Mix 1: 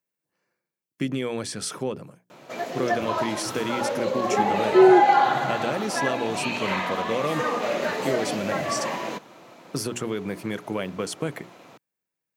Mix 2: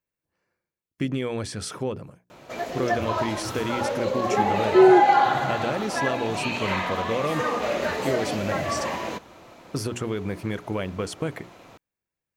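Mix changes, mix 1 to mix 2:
speech: add high shelf 5200 Hz -5.5 dB; master: remove HPF 130 Hz 24 dB/oct

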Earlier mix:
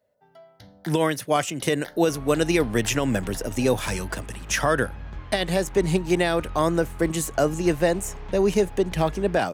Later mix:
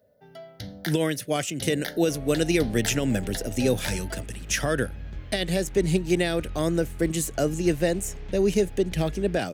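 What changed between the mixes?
first sound +11.5 dB; master: add bell 1000 Hz -13 dB 1 oct

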